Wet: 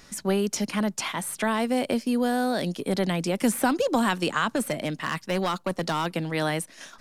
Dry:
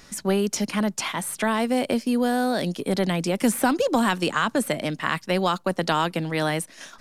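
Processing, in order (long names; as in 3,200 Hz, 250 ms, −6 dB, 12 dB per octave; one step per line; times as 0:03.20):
0:04.56–0:06.06: hard clipping −18 dBFS, distortion −18 dB
level −2 dB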